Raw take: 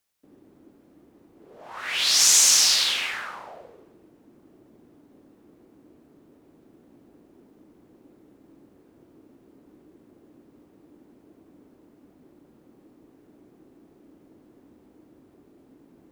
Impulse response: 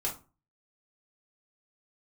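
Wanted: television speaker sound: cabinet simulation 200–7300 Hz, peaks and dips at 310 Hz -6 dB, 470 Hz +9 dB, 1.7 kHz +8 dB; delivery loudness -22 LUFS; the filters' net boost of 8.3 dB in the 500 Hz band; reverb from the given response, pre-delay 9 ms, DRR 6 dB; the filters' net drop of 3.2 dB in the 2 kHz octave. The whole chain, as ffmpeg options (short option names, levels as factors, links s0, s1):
-filter_complex "[0:a]equalizer=f=500:t=o:g=5.5,equalizer=f=2000:t=o:g=-9,asplit=2[s0][s1];[1:a]atrim=start_sample=2205,adelay=9[s2];[s1][s2]afir=irnorm=-1:irlink=0,volume=0.299[s3];[s0][s3]amix=inputs=2:normalize=0,highpass=f=200:w=0.5412,highpass=f=200:w=1.3066,equalizer=f=310:t=q:w=4:g=-6,equalizer=f=470:t=q:w=4:g=9,equalizer=f=1700:t=q:w=4:g=8,lowpass=f=7300:w=0.5412,lowpass=f=7300:w=1.3066,volume=0.794"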